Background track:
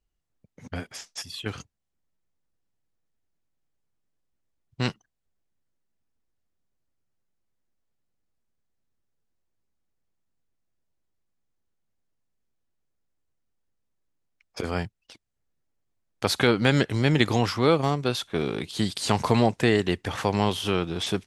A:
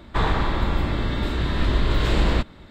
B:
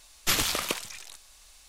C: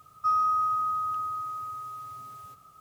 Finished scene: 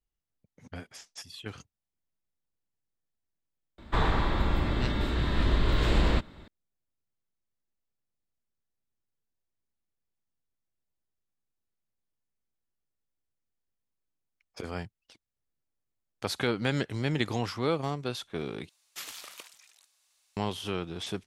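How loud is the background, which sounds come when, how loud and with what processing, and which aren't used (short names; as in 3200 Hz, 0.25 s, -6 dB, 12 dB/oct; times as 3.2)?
background track -8 dB
3.78 add A -4.5 dB
18.69 replace with B -15.5 dB + HPF 800 Hz 6 dB/oct
not used: C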